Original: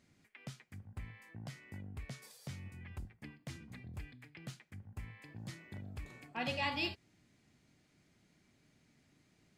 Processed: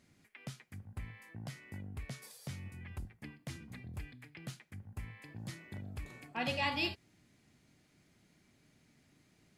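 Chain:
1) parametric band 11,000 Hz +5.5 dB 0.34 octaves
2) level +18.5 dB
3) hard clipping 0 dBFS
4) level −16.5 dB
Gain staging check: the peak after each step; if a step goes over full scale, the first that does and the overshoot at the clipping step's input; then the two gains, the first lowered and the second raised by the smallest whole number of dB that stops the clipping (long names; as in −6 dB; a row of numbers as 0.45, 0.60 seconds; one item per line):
−22.5, −4.0, −4.0, −20.5 dBFS
no step passes full scale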